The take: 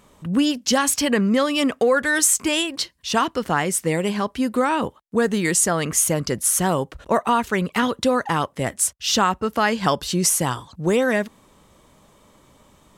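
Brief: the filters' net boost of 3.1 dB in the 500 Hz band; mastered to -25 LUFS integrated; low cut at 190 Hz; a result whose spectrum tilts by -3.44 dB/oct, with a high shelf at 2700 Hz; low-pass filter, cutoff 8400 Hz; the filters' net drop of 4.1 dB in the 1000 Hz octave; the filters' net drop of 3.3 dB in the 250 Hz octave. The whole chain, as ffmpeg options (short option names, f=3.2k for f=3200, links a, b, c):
-af "highpass=190,lowpass=8.4k,equalizer=f=250:t=o:g=-3.5,equalizer=f=500:t=o:g=6,equalizer=f=1k:t=o:g=-6.5,highshelf=f=2.7k:g=-4,volume=-2.5dB"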